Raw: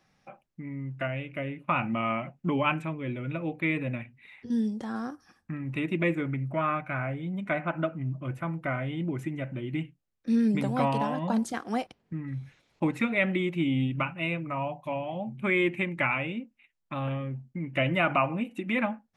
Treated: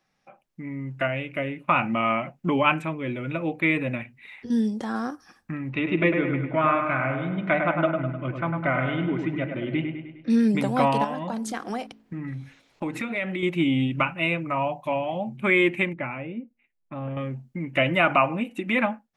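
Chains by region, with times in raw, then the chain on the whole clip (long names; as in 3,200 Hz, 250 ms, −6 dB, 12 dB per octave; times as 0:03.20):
0:05.69–0:10.30: low-pass filter 4,600 Hz 24 dB per octave + delay with a low-pass on its return 102 ms, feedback 52%, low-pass 2,500 Hz, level −5 dB
0:11.04–0:13.43: hum removal 54.5 Hz, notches 8 + downward compressor 4 to 1, threshold −32 dBFS
0:15.93–0:17.17: low-pass filter 1,400 Hz + parametric band 1,100 Hz −8 dB 1.4 octaves + tuned comb filter 120 Hz, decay 0.17 s, mix 40%
whole clip: parametric band 88 Hz −6.5 dB 2.4 octaves; automatic gain control gain up to 11.5 dB; level −4.5 dB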